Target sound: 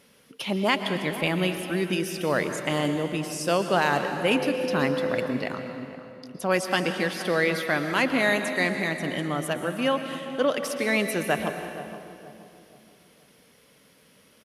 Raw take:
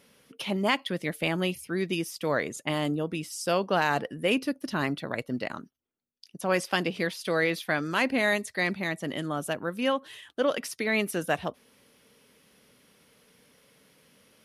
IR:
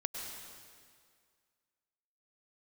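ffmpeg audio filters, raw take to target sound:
-filter_complex "[0:a]asettb=1/sr,asplit=3[s0][s1][s2];[s0]atrim=end=4.314[s3];[s1]atrim=start=4.31:end=5.26,asetpts=PTS-STARTPTS,afade=t=in:d=0.004:c=qsin,afade=t=out:st=0.946:d=0.004:c=qsin,aeval=exprs='val(0)+0.0316*sin(2*PI*510*n/s)':c=same[s4];[s2]atrim=start=5.256[s5];[s3][s4]acrossfade=d=0.004:c1=hsin:c2=qsin[s6];[s6][s5]acrossfade=d=0.004:c1=qsin:c2=hsin,asplit=2[s7][s8];[s8]adelay=474,lowpass=f=970:p=1,volume=0.266,asplit=2[s9][s10];[s10]adelay=474,lowpass=f=970:p=1,volume=0.41,asplit=2[s11][s12];[s12]adelay=474,lowpass=f=970:p=1,volume=0.41,asplit=2[s13][s14];[s14]adelay=474,lowpass=f=970:p=1,volume=0.41[s15];[s7][s9][s11][s13][s15]amix=inputs=5:normalize=0,asplit=2[s16][s17];[1:a]atrim=start_sample=2205,asetrate=38367,aresample=44100[s18];[s17][s18]afir=irnorm=-1:irlink=0,volume=0.944[s19];[s16][s19]amix=inputs=2:normalize=0,volume=0.668"

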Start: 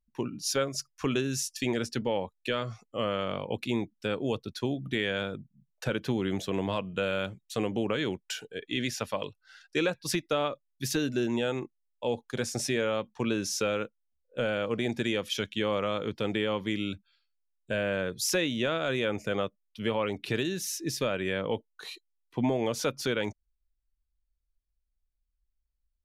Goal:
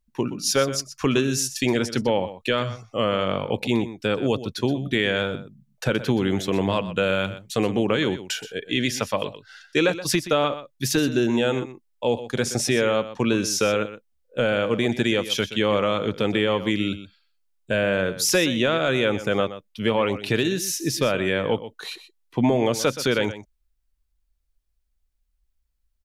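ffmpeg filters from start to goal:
-af "aecho=1:1:124:0.211,volume=2.37"

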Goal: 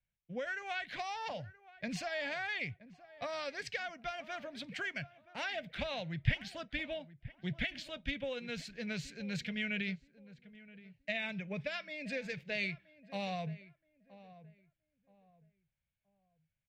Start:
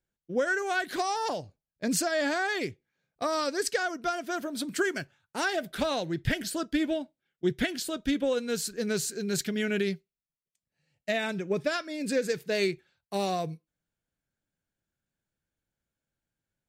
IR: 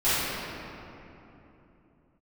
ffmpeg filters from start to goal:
-filter_complex "[0:a]firequalizer=gain_entry='entry(130,0);entry(350,-23);entry(560,-7);entry(1300,-12);entry(2200,3);entry(4400,-11);entry(9600,-29)':delay=0.05:min_phase=1,acrossover=split=260|3000[s0][s1][s2];[s1]acompressor=threshold=0.0158:ratio=6[s3];[s0][s3][s2]amix=inputs=3:normalize=0,asplit=2[s4][s5];[s5]adelay=974,lowpass=f=1300:p=1,volume=0.15,asplit=2[s6][s7];[s7]adelay=974,lowpass=f=1300:p=1,volume=0.3,asplit=2[s8][s9];[s9]adelay=974,lowpass=f=1300:p=1,volume=0.3[s10];[s6][s8][s10]amix=inputs=3:normalize=0[s11];[s4][s11]amix=inputs=2:normalize=0"

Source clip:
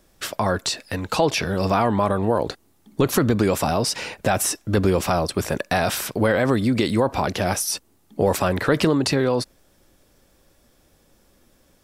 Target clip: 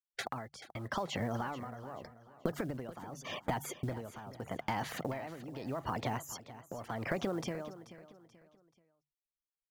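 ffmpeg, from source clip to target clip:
-filter_complex "[0:a]afftfilt=real='re*gte(hypot(re,im),0.0251)':imag='im*gte(hypot(re,im),0.0251)':win_size=1024:overlap=0.75,bandreject=f=60:t=h:w=6,bandreject=f=120:t=h:w=6,agate=range=0.0282:threshold=0.02:ratio=16:detection=peak,lowpass=f=1200:p=1,equalizer=f=310:t=o:w=1.4:g=-4,acompressor=threshold=0.02:ratio=12,asetrate=53802,aresample=44100,acrusher=bits=7:mode=log:mix=0:aa=0.000001,tremolo=f=0.83:d=0.77,asplit=2[s0][s1];[s1]aecho=0:1:433|866|1299:0.178|0.0622|0.0218[s2];[s0][s2]amix=inputs=2:normalize=0,volume=1.41"

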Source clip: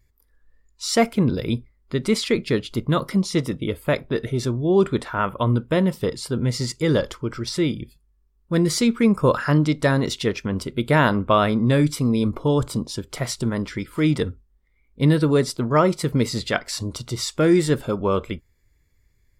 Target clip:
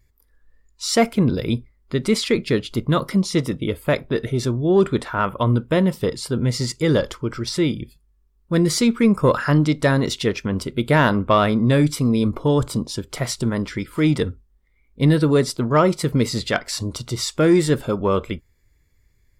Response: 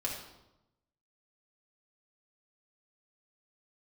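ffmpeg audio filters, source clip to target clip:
-af "asoftclip=type=tanh:threshold=0.562,volume=1.26"

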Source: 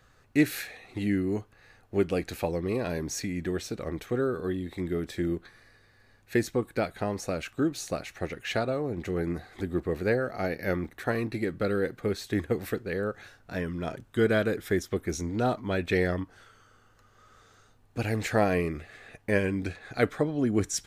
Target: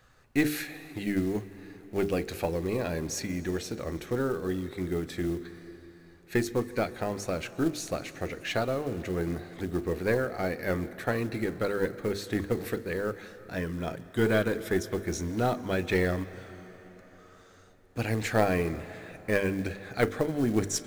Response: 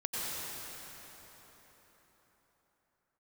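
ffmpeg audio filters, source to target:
-filter_complex "[0:a]bandreject=f=50:t=h:w=6,bandreject=f=100:t=h:w=6,bandreject=f=150:t=h:w=6,bandreject=f=200:t=h:w=6,bandreject=f=250:t=h:w=6,bandreject=f=300:t=h:w=6,bandreject=f=350:t=h:w=6,bandreject=f=400:t=h:w=6,bandreject=f=450:t=h:w=6,aeval=exprs='0.335*(cos(1*acos(clip(val(0)/0.335,-1,1)))-cos(1*PI/2))+0.0237*(cos(2*acos(clip(val(0)/0.335,-1,1)))-cos(2*PI/2))+0.0335*(cos(4*acos(clip(val(0)/0.335,-1,1)))-cos(4*PI/2))':c=same,acrusher=bits=6:mode=log:mix=0:aa=0.000001,asplit=2[s0][s1];[1:a]atrim=start_sample=2205,adelay=37[s2];[s1][s2]afir=irnorm=-1:irlink=0,volume=0.0891[s3];[s0][s3]amix=inputs=2:normalize=0"

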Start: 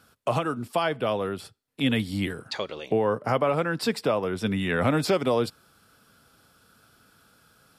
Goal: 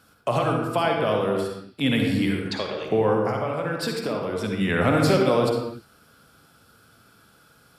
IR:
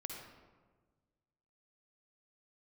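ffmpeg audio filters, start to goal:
-filter_complex "[0:a]asettb=1/sr,asplit=3[s0][s1][s2];[s0]atrim=end=3.214[s3];[s1]atrim=start=3.21:end=4.61,asetpts=PTS-STARTPTS,afade=t=in:d=0.004:c=qsin,afade=t=out:st=1.396:d=0.004:c=qsin,acompressor=threshold=0.0447:ratio=6[s4];[s2]atrim=start=4.606[s5];[s3][s4]acrossfade=d=0.004:c1=hsin:c2=qsin[s6];[s6][s5]acrossfade=d=0.004:c1=qsin:c2=hsin[s7];[1:a]atrim=start_sample=2205,afade=t=out:st=0.41:d=0.01,atrim=end_sample=18522[s8];[s7][s8]afir=irnorm=-1:irlink=0,volume=1.88"

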